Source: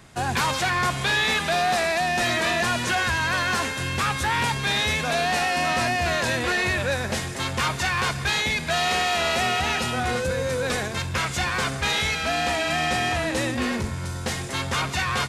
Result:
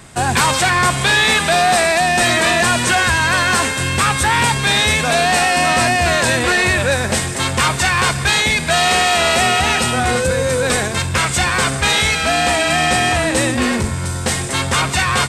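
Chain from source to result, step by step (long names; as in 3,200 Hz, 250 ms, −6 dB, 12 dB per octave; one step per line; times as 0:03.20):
parametric band 8,300 Hz +11.5 dB 0.21 octaves
level +8.5 dB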